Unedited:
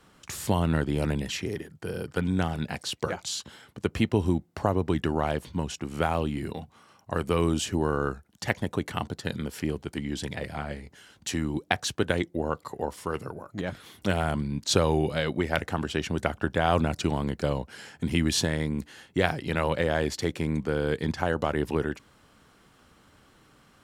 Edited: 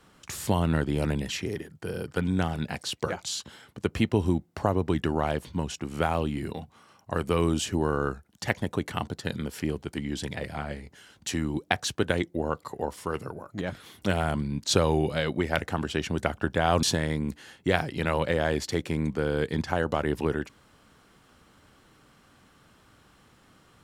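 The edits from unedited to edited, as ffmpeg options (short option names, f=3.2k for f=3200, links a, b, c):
-filter_complex "[0:a]asplit=2[a][b];[a]atrim=end=16.832[c];[b]atrim=start=18.328[d];[c][d]acrossfade=d=0.004:c1=hsin:c2=hsin"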